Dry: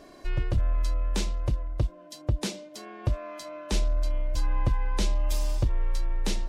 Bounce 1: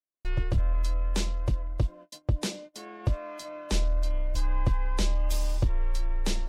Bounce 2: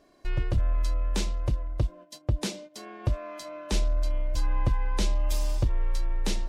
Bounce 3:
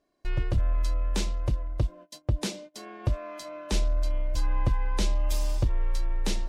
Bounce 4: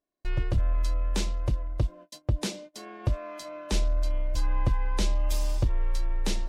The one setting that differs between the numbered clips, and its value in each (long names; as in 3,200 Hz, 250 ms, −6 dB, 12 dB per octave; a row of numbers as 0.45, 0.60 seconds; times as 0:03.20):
noise gate, range: −59, −11, −25, −40 decibels